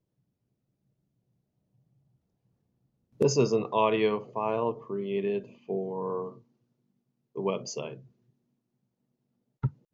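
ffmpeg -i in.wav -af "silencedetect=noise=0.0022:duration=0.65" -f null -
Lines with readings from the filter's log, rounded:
silence_start: 0.00
silence_end: 3.16 | silence_duration: 3.16
silence_start: 6.41
silence_end: 7.36 | silence_duration: 0.94
silence_start: 8.07
silence_end: 9.63 | silence_duration: 1.56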